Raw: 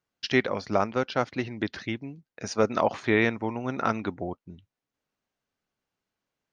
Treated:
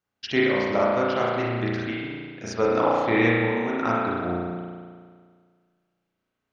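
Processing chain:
spring reverb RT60 1.8 s, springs 34 ms, chirp 30 ms, DRR −5.5 dB
level −2.5 dB

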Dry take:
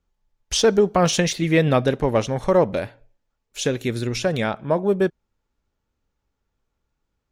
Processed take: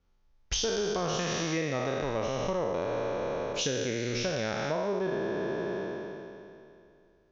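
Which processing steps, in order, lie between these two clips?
peak hold with a decay on every bin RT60 2.55 s
downward compressor 8 to 1, threshold −28 dBFS, peak gain reduction 18.5 dB
Butterworth low-pass 6,500 Hz 72 dB per octave

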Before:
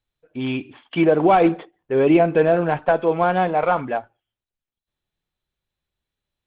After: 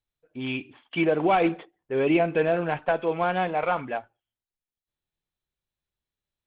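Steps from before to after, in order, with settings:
dynamic equaliser 2,600 Hz, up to +7 dB, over −40 dBFS, Q 1.1
level −7 dB

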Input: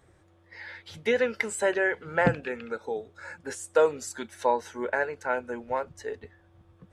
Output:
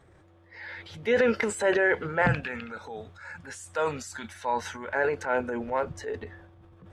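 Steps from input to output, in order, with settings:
0:02.22–0:04.95: parametric band 390 Hz −13 dB 1.4 octaves
transient designer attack −5 dB, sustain +8 dB
high-shelf EQ 5,800 Hz −10.5 dB
level +3 dB

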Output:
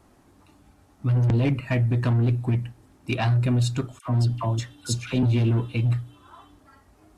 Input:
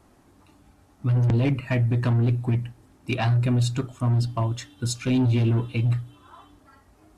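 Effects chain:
0:03.99–0:05.23: all-pass dispersion lows, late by 74 ms, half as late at 1,100 Hz

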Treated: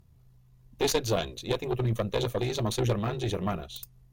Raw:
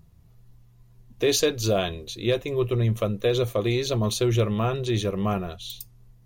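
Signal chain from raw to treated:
time stretch by overlap-add 0.66×, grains 36 ms
harmonic generator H 4 −12 dB, 6 −27 dB, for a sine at −11.5 dBFS
level −3.5 dB

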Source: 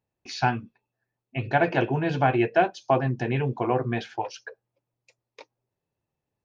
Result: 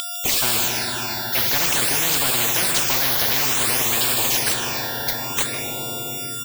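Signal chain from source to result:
spectral magnitudes quantised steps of 30 dB
high-shelf EQ 2,900 Hz +7.5 dB
in parallel at +2.5 dB: brickwall limiter −18.5 dBFS, peak gain reduction 11 dB
on the sum: steady tone 3,500 Hz −30 dBFS
bit-depth reduction 6 bits, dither none
on a send at −10.5 dB: convolution reverb RT60 3.9 s, pre-delay 12 ms
on the sum: all-pass phaser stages 8, 0.55 Hz, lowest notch 330–1,900 Hz
single-tap delay 156 ms −19 dB
every bin compressed towards the loudest bin 10 to 1

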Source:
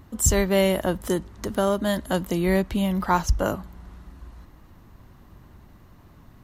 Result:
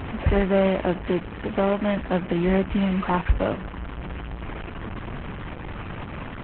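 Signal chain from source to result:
linear delta modulator 16 kbit/s, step −26 dBFS
level +1.5 dB
Opus 8 kbit/s 48,000 Hz

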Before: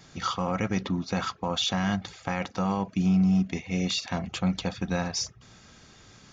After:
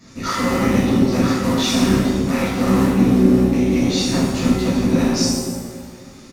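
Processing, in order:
sub-harmonics by changed cycles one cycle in 3, muted
thirty-one-band graphic EQ 250 Hz +12 dB, 400 Hz −5 dB, 800 Hz −10 dB, 1,600 Hz −6 dB, 3,150 Hz −9 dB
downward compressor, threshold −22 dBFS, peak gain reduction 7 dB
on a send: delay with a low-pass on its return 272 ms, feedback 36%, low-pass 540 Hz, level −4 dB
on the sum: downsampling to 32,000 Hz
reverb with rising layers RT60 1 s, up +7 semitones, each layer −8 dB, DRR −11 dB

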